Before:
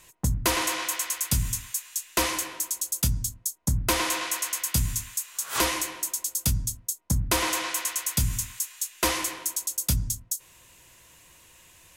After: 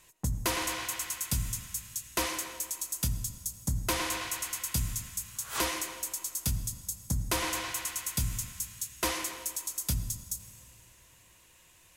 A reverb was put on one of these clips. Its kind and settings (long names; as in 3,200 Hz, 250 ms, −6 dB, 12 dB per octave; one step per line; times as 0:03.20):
comb and all-pass reverb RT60 2.8 s, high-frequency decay 0.95×, pre-delay 45 ms, DRR 12.5 dB
level −6 dB